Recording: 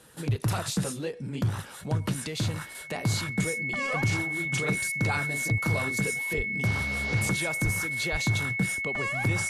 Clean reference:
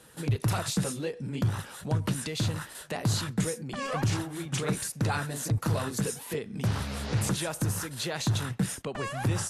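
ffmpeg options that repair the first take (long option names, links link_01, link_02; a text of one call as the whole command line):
ffmpeg -i in.wav -filter_complex "[0:a]bandreject=frequency=2200:width=30,asplit=3[link_01][link_02][link_03];[link_01]afade=type=out:start_time=6.36:duration=0.02[link_04];[link_02]highpass=frequency=140:width=0.5412,highpass=frequency=140:width=1.3066,afade=type=in:start_time=6.36:duration=0.02,afade=type=out:start_time=6.48:duration=0.02[link_05];[link_03]afade=type=in:start_time=6.48:duration=0.02[link_06];[link_04][link_05][link_06]amix=inputs=3:normalize=0,asplit=3[link_07][link_08][link_09];[link_07]afade=type=out:start_time=7.63:duration=0.02[link_10];[link_08]highpass=frequency=140:width=0.5412,highpass=frequency=140:width=1.3066,afade=type=in:start_time=7.63:duration=0.02,afade=type=out:start_time=7.75:duration=0.02[link_11];[link_09]afade=type=in:start_time=7.75:duration=0.02[link_12];[link_10][link_11][link_12]amix=inputs=3:normalize=0,asplit=3[link_13][link_14][link_15];[link_13]afade=type=out:start_time=8.11:duration=0.02[link_16];[link_14]highpass=frequency=140:width=0.5412,highpass=frequency=140:width=1.3066,afade=type=in:start_time=8.11:duration=0.02,afade=type=out:start_time=8.23:duration=0.02[link_17];[link_15]afade=type=in:start_time=8.23:duration=0.02[link_18];[link_16][link_17][link_18]amix=inputs=3:normalize=0" out.wav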